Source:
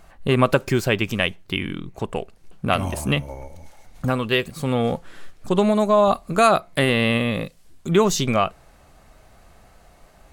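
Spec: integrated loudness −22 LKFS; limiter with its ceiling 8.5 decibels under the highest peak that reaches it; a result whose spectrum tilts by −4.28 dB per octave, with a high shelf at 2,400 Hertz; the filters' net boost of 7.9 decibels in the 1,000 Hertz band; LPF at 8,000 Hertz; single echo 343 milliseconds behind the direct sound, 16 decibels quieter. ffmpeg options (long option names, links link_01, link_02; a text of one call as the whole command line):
ffmpeg -i in.wav -af "lowpass=8000,equalizer=frequency=1000:width_type=o:gain=8.5,highshelf=frequency=2400:gain=8,alimiter=limit=-6.5dB:level=0:latency=1,aecho=1:1:343:0.158,volume=-2dB" out.wav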